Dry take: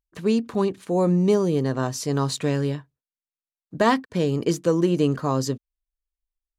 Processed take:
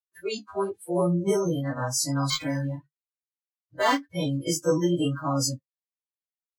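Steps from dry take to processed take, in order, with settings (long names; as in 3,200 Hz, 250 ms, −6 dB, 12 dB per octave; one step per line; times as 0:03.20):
every partial snapped to a pitch grid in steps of 2 semitones
bit reduction 10 bits
noise reduction from a noise print of the clip's start 27 dB
flanger 0.94 Hz, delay 6.5 ms, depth 6.7 ms, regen −42%
0:02.30–0:04.03: linearly interpolated sample-rate reduction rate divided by 4×
level +1 dB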